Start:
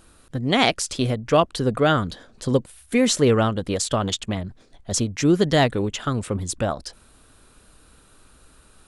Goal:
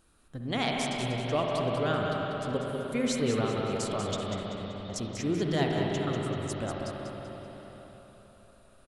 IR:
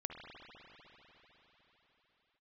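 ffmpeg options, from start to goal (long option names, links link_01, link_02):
-filter_complex "[0:a]asettb=1/sr,asplit=3[link_01][link_02][link_03];[link_01]atrim=end=4.174[link_04];[link_02]atrim=start=4.17:end=4.96,asetpts=PTS-STARTPTS,afade=type=in:duration=0.004:curve=qsin,afade=type=out:start_time=0.786:duration=0.004:curve=qsin,lowpass=3300[link_05];[link_03]atrim=start=4.956[link_06];[link_04][link_05]acrossfade=duration=0.004:curve1=hsin:curve2=qsin[link_07];[link_07][link_06]acrossfade=duration=0.004:curve1=qsin:curve2=hsin,aecho=1:1:192|384|576|768|960:0.422|0.173|0.0709|0.0291|0.0119[link_08];[1:a]atrim=start_sample=2205[link_09];[link_08][link_09]afir=irnorm=-1:irlink=0,volume=-8.5dB"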